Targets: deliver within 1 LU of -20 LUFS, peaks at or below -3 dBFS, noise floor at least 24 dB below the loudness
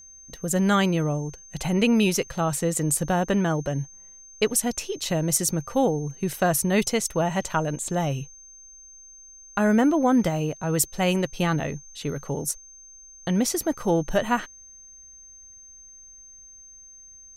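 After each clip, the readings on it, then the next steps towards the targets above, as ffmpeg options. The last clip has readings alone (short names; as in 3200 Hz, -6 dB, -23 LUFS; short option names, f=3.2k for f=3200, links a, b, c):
steady tone 6300 Hz; tone level -45 dBFS; loudness -24.5 LUFS; peak -9.0 dBFS; loudness target -20.0 LUFS
-> -af "bandreject=f=6.3k:w=30"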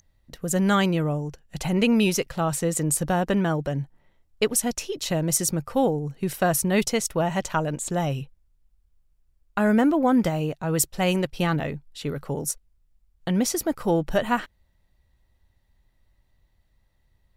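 steady tone none; loudness -24.5 LUFS; peak -9.0 dBFS; loudness target -20.0 LUFS
-> -af "volume=4.5dB"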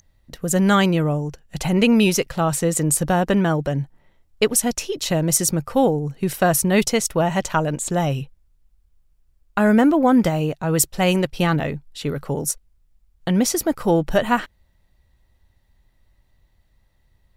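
loudness -20.0 LUFS; peak -4.5 dBFS; noise floor -62 dBFS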